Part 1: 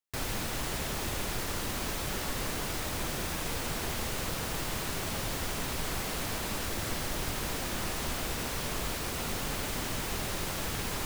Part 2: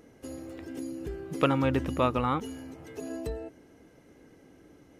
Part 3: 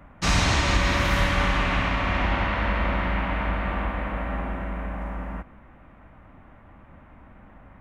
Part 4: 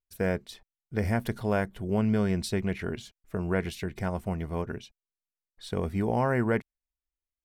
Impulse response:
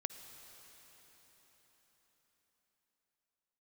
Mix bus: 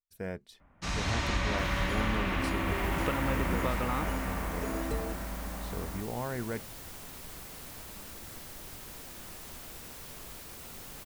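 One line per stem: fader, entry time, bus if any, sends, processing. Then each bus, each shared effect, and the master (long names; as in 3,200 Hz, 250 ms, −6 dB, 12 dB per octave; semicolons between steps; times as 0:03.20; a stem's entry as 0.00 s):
0:02.31 −24 dB → 0:02.86 −14 dB, 1.45 s, no send, high-shelf EQ 9,000 Hz +9.5 dB
0.0 dB, 1.65 s, no send, downward compressor, threshold −30 dBFS, peak gain reduction 11.5 dB
−13.0 dB, 0.60 s, no send, automatic gain control gain up to 5 dB
−10.0 dB, 0.00 s, no send, no processing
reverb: not used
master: no processing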